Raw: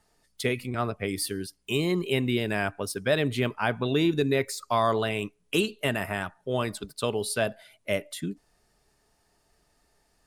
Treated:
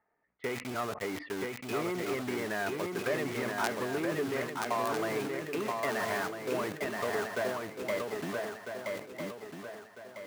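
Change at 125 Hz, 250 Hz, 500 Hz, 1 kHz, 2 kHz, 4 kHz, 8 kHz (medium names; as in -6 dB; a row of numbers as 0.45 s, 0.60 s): -12.0 dB, -7.0 dB, -4.5 dB, -3.0 dB, -3.5 dB, -9.5 dB, -7.0 dB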